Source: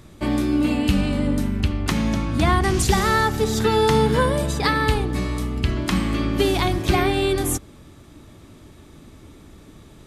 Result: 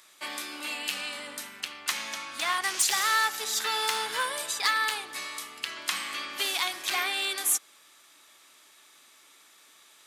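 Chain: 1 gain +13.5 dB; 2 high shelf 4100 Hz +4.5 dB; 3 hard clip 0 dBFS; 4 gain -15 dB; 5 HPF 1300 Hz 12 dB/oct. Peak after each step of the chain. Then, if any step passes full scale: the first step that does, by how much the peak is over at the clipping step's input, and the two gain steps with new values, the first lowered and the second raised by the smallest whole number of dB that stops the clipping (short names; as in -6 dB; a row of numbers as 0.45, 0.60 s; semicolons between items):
+7.5, +8.5, 0.0, -15.0, -11.5 dBFS; step 1, 8.5 dB; step 1 +4.5 dB, step 4 -6 dB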